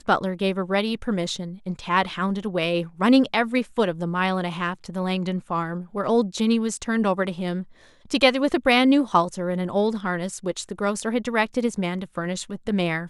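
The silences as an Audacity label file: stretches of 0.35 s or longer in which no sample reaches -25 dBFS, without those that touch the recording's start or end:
7.610000	8.110000	silence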